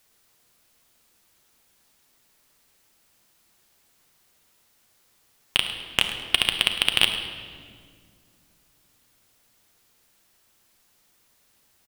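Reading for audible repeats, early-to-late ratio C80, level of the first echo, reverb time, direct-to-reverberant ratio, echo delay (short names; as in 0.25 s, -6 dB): 1, 8.0 dB, -15.0 dB, 2.1 s, 5.5 dB, 0.105 s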